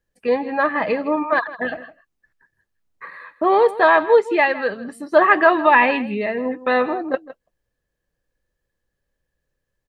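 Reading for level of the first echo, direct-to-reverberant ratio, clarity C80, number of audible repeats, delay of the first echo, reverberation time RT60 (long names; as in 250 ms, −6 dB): −16.5 dB, no reverb audible, no reverb audible, 1, 160 ms, no reverb audible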